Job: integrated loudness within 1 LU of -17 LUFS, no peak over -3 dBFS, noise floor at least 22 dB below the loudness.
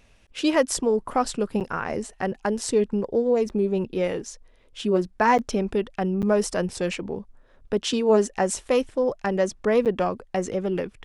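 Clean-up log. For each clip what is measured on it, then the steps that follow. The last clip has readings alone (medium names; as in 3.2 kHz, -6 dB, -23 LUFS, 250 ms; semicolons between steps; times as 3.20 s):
dropouts 5; longest dropout 8.0 ms; loudness -24.5 LUFS; peak level -6.0 dBFS; loudness target -17.0 LUFS
-> interpolate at 1.60/3.49/5.38/6.22/9.85 s, 8 ms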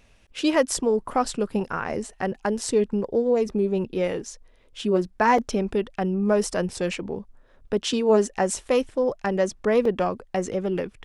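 dropouts 0; loudness -24.5 LUFS; peak level -6.0 dBFS; loudness target -17.0 LUFS
-> trim +7.5 dB; peak limiter -3 dBFS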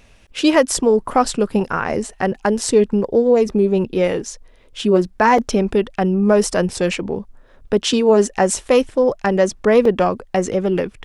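loudness -17.5 LUFS; peak level -3.0 dBFS; noise floor -49 dBFS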